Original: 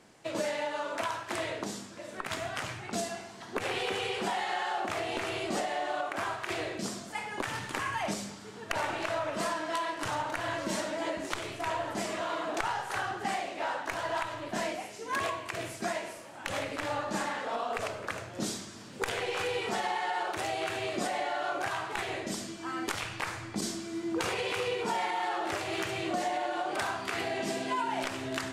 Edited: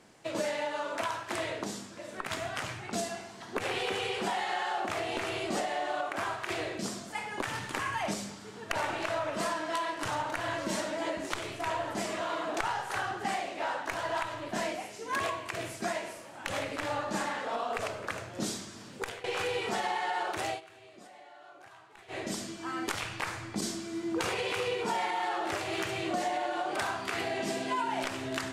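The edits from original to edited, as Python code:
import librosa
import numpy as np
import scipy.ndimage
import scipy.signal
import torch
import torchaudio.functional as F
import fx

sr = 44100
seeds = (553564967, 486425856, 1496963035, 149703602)

y = fx.edit(x, sr, fx.fade_out_to(start_s=18.9, length_s=0.34, floor_db=-18.0),
    fx.fade_down_up(start_s=20.48, length_s=1.73, db=-20.0, fade_s=0.13, curve='qsin'), tone=tone)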